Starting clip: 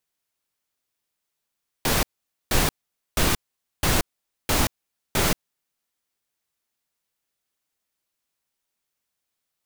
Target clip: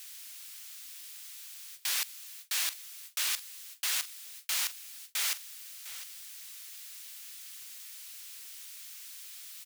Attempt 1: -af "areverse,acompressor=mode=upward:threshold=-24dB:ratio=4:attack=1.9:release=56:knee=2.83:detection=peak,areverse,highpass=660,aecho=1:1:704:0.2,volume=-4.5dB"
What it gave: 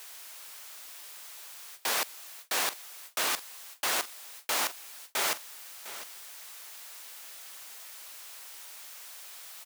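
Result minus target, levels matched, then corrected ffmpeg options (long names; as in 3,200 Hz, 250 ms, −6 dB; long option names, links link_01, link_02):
500 Hz band +18.5 dB
-af "areverse,acompressor=mode=upward:threshold=-24dB:ratio=4:attack=1.9:release=56:knee=2.83:detection=peak,areverse,highpass=2300,aecho=1:1:704:0.2,volume=-4.5dB"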